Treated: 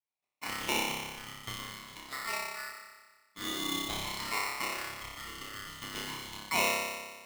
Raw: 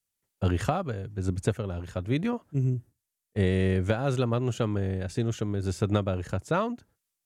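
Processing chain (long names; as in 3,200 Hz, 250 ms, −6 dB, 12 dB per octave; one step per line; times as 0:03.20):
auto-filter band-pass saw up 0.47 Hz 730–2,600 Hz
on a send: flutter between parallel walls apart 5.1 metres, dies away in 1.4 s
on the sum: ring modulator with a square carrier 1,600 Hz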